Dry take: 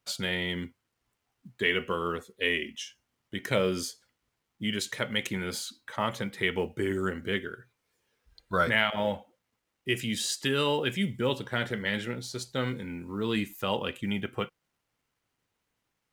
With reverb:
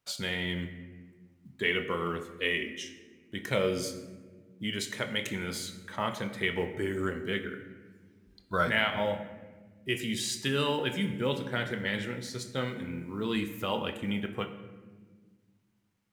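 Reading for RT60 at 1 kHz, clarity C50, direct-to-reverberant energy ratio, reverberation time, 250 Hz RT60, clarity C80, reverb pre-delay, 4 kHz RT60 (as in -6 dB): 1.2 s, 10.0 dB, 7.0 dB, 1.5 s, 2.5 s, 12.0 dB, 21 ms, 0.80 s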